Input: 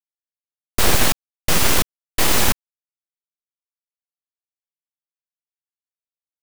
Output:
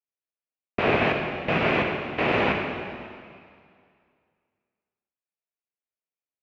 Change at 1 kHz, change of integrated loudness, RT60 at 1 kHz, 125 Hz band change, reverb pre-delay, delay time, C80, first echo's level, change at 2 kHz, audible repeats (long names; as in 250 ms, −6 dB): −1.0 dB, −5.5 dB, 2.2 s, −4.0 dB, 7 ms, no echo audible, 4.5 dB, no echo audible, −0.5 dB, no echo audible